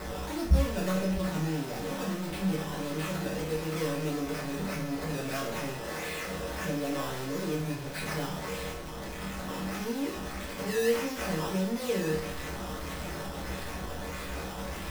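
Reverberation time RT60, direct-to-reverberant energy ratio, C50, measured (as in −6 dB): 0.50 s, −6.0 dB, 6.0 dB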